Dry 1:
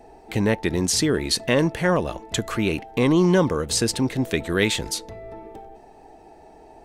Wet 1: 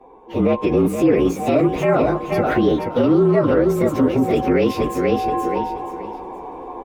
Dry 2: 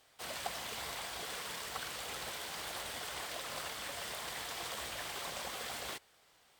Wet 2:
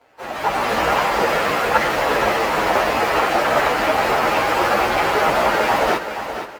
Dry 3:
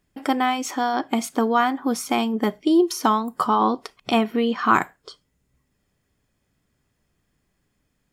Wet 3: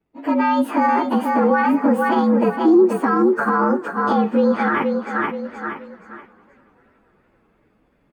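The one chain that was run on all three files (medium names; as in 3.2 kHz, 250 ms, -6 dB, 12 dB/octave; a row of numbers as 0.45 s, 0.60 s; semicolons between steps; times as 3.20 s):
frequency axis rescaled in octaves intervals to 114%; feedback delay 475 ms, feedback 27%, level -9.5 dB; level rider gain up to 13 dB; peak limiter -12.5 dBFS; tilt shelf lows +4 dB, about 850 Hz; Chebyshev shaper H 3 -28 dB, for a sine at -8.5 dBFS; three-band isolator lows -13 dB, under 240 Hz, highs -17 dB, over 2.6 kHz; modulated delay 284 ms, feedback 65%, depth 212 cents, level -23.5 dB; normalise loudness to -18 LUFS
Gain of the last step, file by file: +6.0 dB, +21.0 dB, +5.0 dB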